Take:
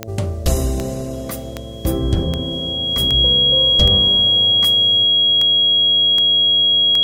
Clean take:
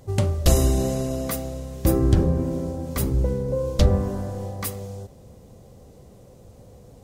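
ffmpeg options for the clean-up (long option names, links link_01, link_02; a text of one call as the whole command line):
ffmpeg -i in.wav -af "adeclick=threshold=4,bandreject=frequency=111.6:width_type=h:width=4,bandreject=frequency=223.2:width_type=h:width=4,bandreject=frequency=334.8:width_type=h:width=4,bandreject=frequency=446.4:width_type=h:width=4,bandreject=frequency=558:width_type=h:width=4,bandreject=frequency=669.6:width_type=h:width=4,bandreject=frequency=3300:width=30" out.wav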